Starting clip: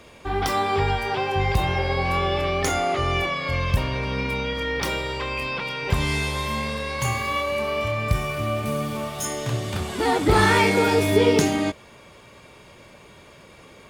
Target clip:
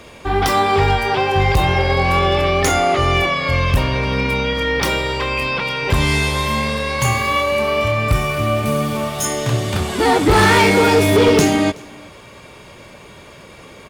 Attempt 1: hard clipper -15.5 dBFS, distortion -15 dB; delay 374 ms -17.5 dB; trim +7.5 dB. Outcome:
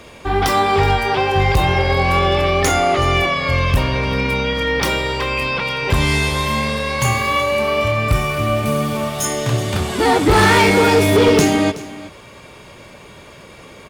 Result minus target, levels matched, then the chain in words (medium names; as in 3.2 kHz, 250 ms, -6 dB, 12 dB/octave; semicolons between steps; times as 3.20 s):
echo-to-direct +8 dB
hard clipper -15.5 dBFS, distortion -15 dB; delay 374 ms -25.5 dB; trim +7.5 dB